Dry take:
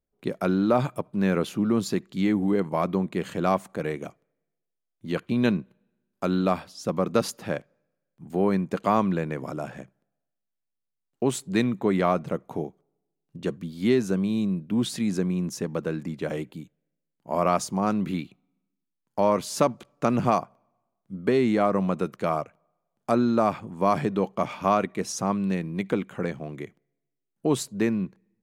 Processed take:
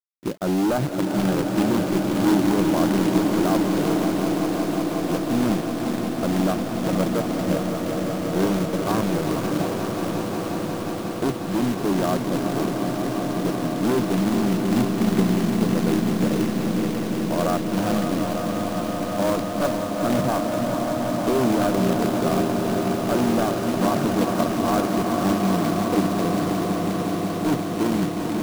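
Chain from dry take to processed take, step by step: Wiener smoothing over 41 samples; bell 310 Hz +8 dB 0.24 oct; added harmonics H 4 -13 dB, 5 -20 dB, 6 -18 dB, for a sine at -5.5 dBFS; overloaded stage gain 18.5 dB; elliptic low-pass 1600 Hz; diffused feedback echo 0.465 s, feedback 78%, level -6.5 dB; companded quantiser 4-bit; swelling echo 0.18 s, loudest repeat 5, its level -11 dB

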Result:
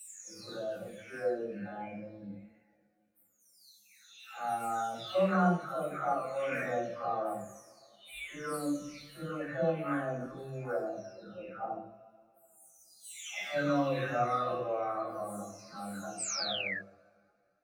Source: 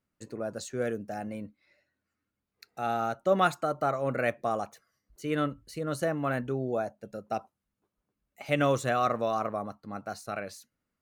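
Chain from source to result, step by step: spectral delay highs early, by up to 0.638 s; two-slope reverb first 0.33 s, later 1.6 s, from -22 dB, DRR -5 dB; painted sound fall, 10.12–10.5, 1600–8800 Hz -28 dBFS; plain phase-vocoder stretch 1.6×; gain -5.5 dB

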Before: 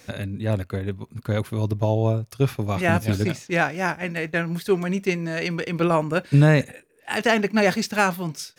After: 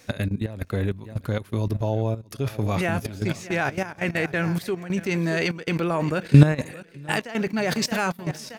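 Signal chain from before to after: feedback echo 0.624 s, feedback 52%, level -18.5 dB; level quantiser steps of 15 dB; step gate "xxx.xxxxx.x" 98 bpm -12 dB; gain +6.5 dB

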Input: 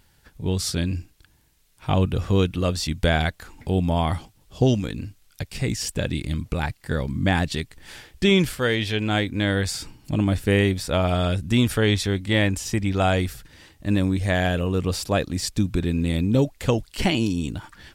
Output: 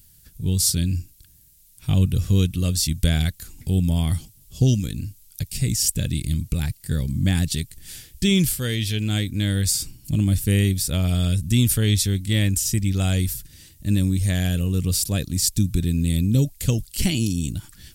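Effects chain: EQ curve 150 Hz 0 dB, 890 Hz -20 dB, 12000 Hz +11 dB; gain +4 dB

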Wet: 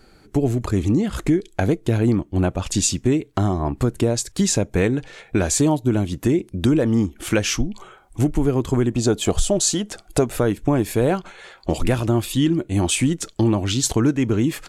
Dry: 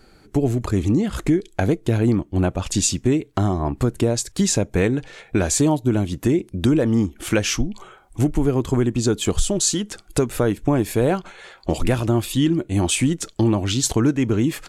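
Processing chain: 8.91–10.36 bell 670 Hz +9.5 dB 0.54 oct

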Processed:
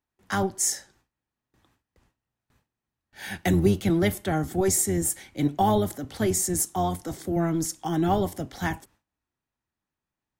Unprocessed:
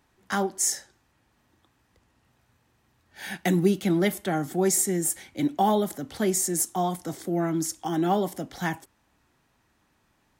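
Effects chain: octaver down 1 oct, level -4 dB; gate with hold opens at -54 dBFS

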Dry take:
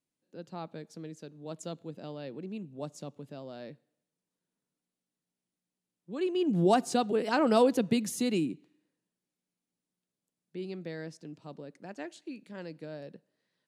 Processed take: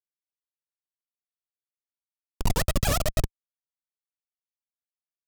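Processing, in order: Schmitt trigger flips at -23 dBFS; wide varispeed 2.59×; tone controls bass +12 dB, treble +9 dB; gain +7 dB

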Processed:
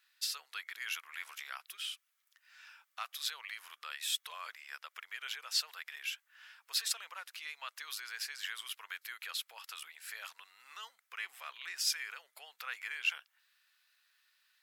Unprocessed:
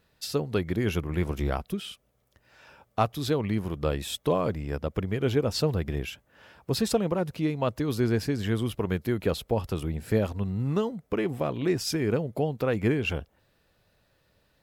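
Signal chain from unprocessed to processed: limiter -19 dBFS, peak gain reduction 6.5 dB; HPF 1400 Hz 24 dB/oct

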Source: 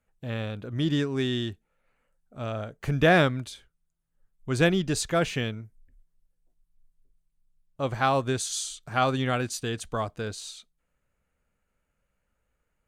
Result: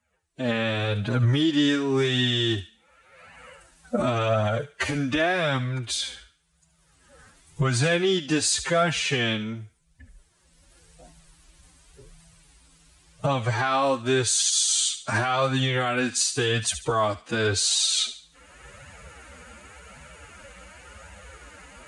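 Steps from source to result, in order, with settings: recorder AGC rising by 30 dB/s; HPF 52 Hz 24 dB/oct; tilt shelf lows -3 dB, about 660 Hz; limiter -16.5 dBFS, peak gain reduction 10 dB; time stretch by phase-locked vocoder 1.7×; flange 0.9 Hz, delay 1 ms, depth 3.1 ms, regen -8%; thin delay 72 ms, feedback 35%, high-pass 1800 Hz, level -11 dB; gain +7 dB; Vorbis 64 kbps 22050 Hz

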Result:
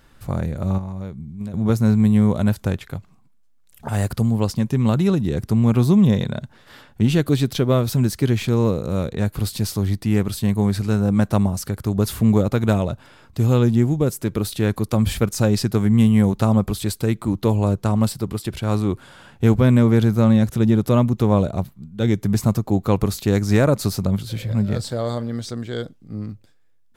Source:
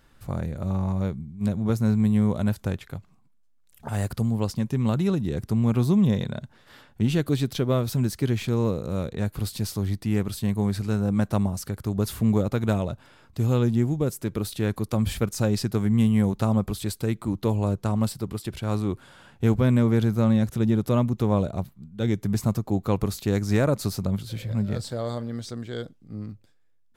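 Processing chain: 0.78–1.54 compressor 16:1, threshold -32 dBFS, peak gain reduction 13 dB; gain +5.5 dB

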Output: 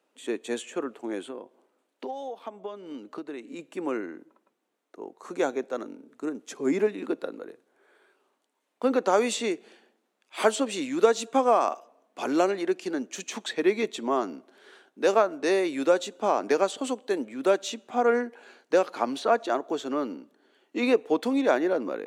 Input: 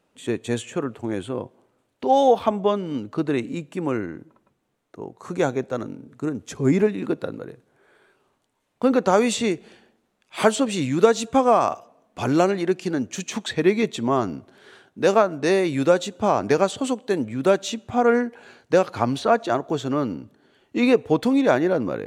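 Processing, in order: 1.22–3.59 compressor 16:1, threshold -28 dBFS, peak gain reduction 17.5 dB; HPF 260 Hz 24 dB/oct; gain -4 dB

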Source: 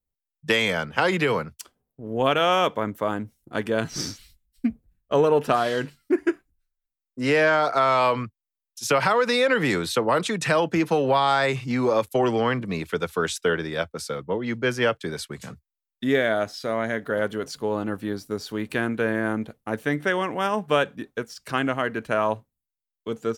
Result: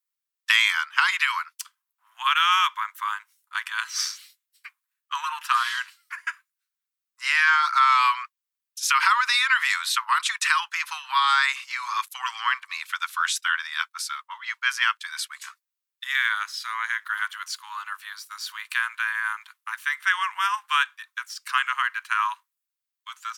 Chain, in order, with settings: steep high-pass 1000 Hz 72 dB/oct; gain +4.5 dB

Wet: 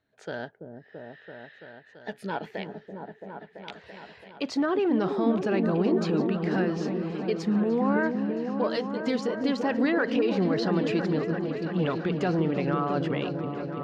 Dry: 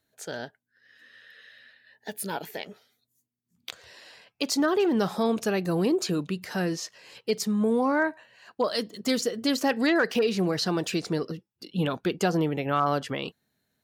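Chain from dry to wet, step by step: LPF 2700 Hz 12 dB/oct; limiter -20 dBFS, peak gain reduction 7 dB; repeats that get brighter 0.335 s, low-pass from 400 Hz, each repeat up 1 oct, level -3 dB; gain +1 dB

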